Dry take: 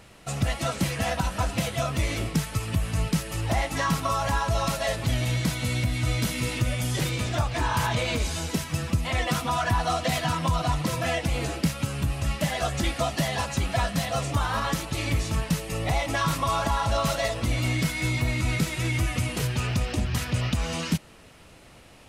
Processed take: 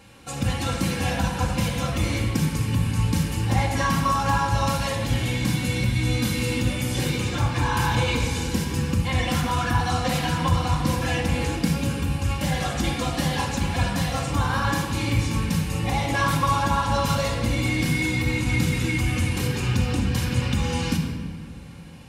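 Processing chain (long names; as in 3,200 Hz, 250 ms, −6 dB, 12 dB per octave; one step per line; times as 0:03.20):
notch filter 620 Hz, Q 12
notch comb filter 650 Hz
rectangular room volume 2,000 cubic metres, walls mixed, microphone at 2.2 metres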